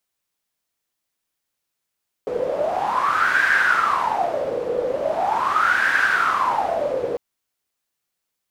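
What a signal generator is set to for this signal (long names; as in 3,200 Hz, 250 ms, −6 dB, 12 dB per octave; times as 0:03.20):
wind from filtered noise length 4.90 s, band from 480 Hz, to 1,600 Hz, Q 11, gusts 2, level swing 6 dB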